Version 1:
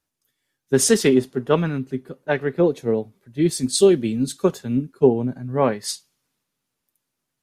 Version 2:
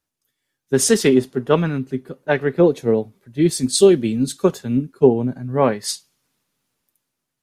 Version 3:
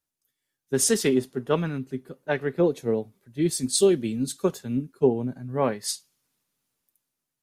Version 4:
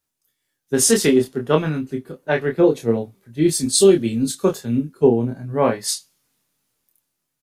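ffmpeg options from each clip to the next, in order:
-af "dynaudnorm=f=130:g=13:m=11.5dB,volume=-1dB"
-af "highshelf=f=6.6k:g=6.5,volume=-7.5dB"
-filter_complex "[0:a]asplit=2[a][b];[b]adelay=26,volume=-4dB[c];[a][c]amix=inputs=2:normalize=0,volume=5dB"

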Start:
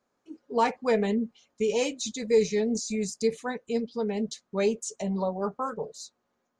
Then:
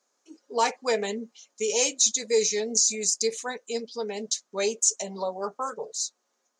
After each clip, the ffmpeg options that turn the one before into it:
-af "highpass=360,equalizer=f=6.4k:w=0.93:g=15"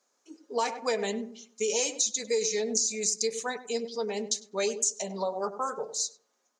-filter_complex "[0:a]asplit=2[a][b];[b]adelay=99,lowpass=f=1k:p=1,volume=-11dB,asplit=2[c][d];[d]adelay=99,lowpass=f=1k:p=1,volume=0.35,asplit=2[e][f];[f]adelay=99,lowpass=f=1k:p=1,volume=0.35,asplit=2[g][h];[h]adelay=99,lowpass=f=1k:p=1,volume=0.35[i];[a][c][e][g][i]amix=inputs=5:normalize=0,acompressor=threshold=-24dB:ratio=6"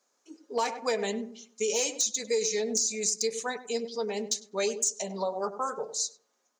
-af "asoftclip=type=hard:threshold=-18.5dB"

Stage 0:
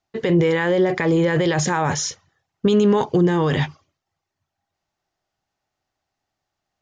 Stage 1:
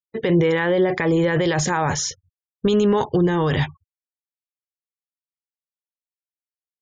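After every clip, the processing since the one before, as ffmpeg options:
-af "asubboost=boost=4:cutoff=94,afftfilt=real='re*gte(hypot(re,im),0.01)':imag='im*gte(hypot(re,im),0.01)':win_size=1024:overlap=0.75"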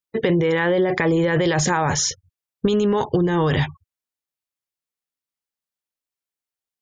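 -af "acompressor=threshold=-20dB:ratio=6,volume=4.5dB"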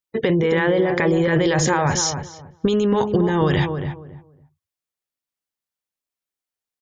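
-filter_complex "[0:a]asplit=2[a][b];[b]adelay=277,lowpass=f=990:p=1,volume=-6dB,asplit=2[c][d];[d]adelay=277,lowpass=f=990:p=1,volume=0.23,asplit=2[e][f];[f]adelay=277,lowpass=f=990:p=1,volume=0.23[g];[a][c][e][g]amix=inputs=4:normalize=0"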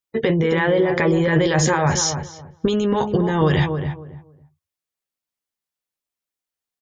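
-filter_complex "[0:a]asplit=2[a][b];[b]adelay=13,volume=-9dB[c];[a][c]amix=inputs=2:normalize=0"

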